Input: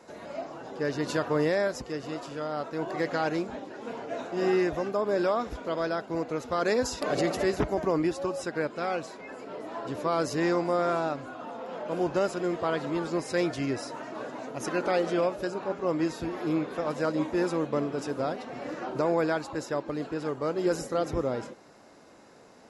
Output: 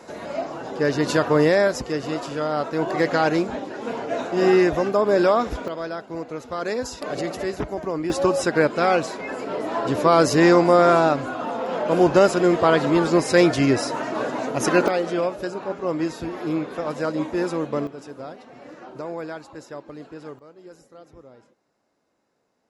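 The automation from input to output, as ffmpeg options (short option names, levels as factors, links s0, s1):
-af "asetnsamples=n=441:p=0,asendcmd='5.68 volume volume -0.5dB;8.1 volume volume 11.5dB;14.88 volume volume 3dB;17.87 volume volume -6dB;20.39 volume volume -18dB',volume=2.66"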